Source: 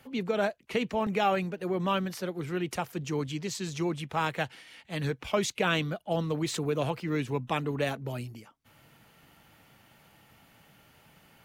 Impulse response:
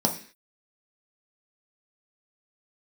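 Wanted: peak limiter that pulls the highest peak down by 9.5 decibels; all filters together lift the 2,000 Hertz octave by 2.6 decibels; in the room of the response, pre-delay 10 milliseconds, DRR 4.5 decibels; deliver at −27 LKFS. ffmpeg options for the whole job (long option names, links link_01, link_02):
-filter_complex "[0:a]equalizer=frequency=2000:width_type=o:gain=3.5,alimiter=limit=-20.5dB:level=0:latency=1,asplit=2[link_01][link_02];[1:a]atrim=start_sample=2205,adelay=10[link_03];[link_02][link_03]afir=irnorm=-1:irlink=0,volume=-15.5dB[link_04];[link_01][link_04]amix=inputs=2:normalize=0,volume=2dB"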